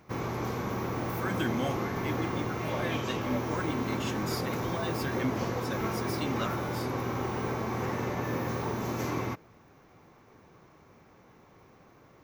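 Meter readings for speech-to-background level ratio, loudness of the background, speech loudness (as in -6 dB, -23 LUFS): -4.0 dB, -33.0 LUFS, -37.0 LUFS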